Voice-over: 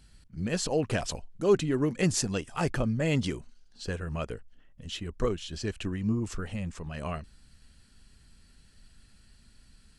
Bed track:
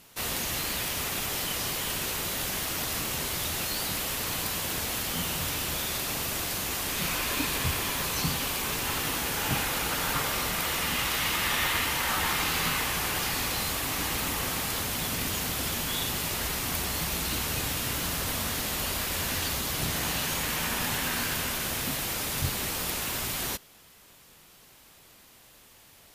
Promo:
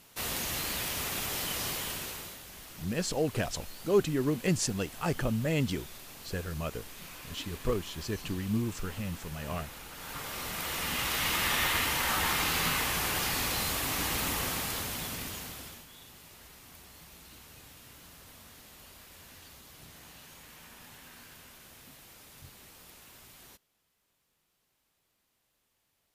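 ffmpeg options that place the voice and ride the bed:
ffmpeg -i stem1.wav -i stem2.wav -filter_complex "[0:a]adelay=2450,volume=-2dB[link_01];[1:a]volume=12.5dB,afade=type=out:start_time=1.7:duration=0.71:silence=0.199526,afade=type=in:start_time=9.93:duration=1.43:silence=0.16788,afade=type=out:start_time=14.33:duration=1.54:silence=0.0944061[link_02];[link_01][link_02]amix=inputs=2:normalize=0" out.wav

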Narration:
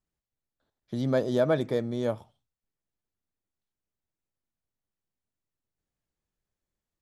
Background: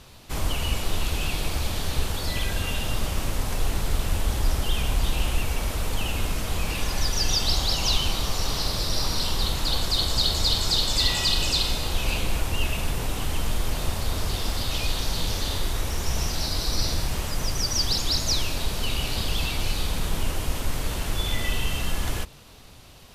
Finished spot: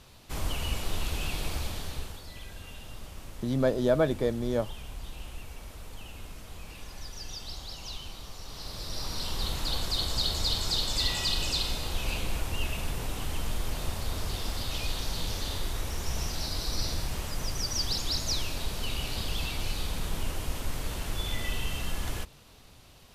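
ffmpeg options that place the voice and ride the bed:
ffmpeg -i stem1.wav -i stem2.wav -filter_complex "[0:a]adelay=2500,volume=0dB[link_01];[1:a]volume=5.5dB,afade=type=out:start_time=1.53:duration=0.71:silence=0.266073,afade=type=in:start_time=8.46:duration=1.08:silence=0.281838[link_02];[link_01][link_02]amix=inputs=2:normalize=0" out.wav

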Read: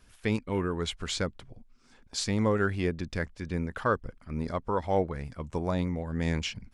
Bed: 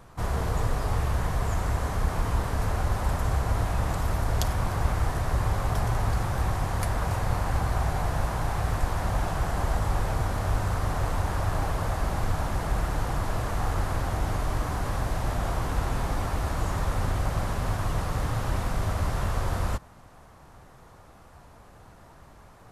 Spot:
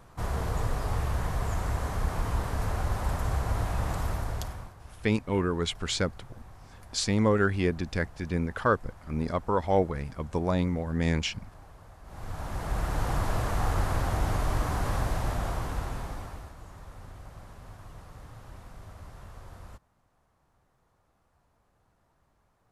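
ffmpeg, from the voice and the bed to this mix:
ffmpeg -i stem1.wav -i stem2.wav -filter_complex "[0:a]adelay=4800,volume=2.5dB[link_01];[1:a]volume=20dB,afade=type=out:start_time=4.03:duration=0.71:silence=0.1,afade=type=in:start_time=12.04:duration=1.09:silence=0.0707946,afade=type=out:start_time=14.96:duration=1.58:silence=0.112202[link_02];[link_01][link_02]amix=inputs=2:normalize=0" out.wav

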